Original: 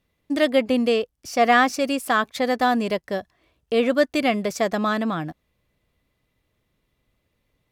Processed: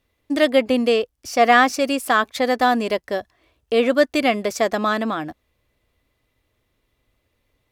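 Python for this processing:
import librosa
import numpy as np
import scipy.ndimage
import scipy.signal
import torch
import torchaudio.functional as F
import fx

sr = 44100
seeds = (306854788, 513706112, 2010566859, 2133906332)

y = fx.peak_eq(x, sr, hz=170.0, db=-15.0, octaves=0.36)
y = y * 10.0 ** (3.0 / 20.0)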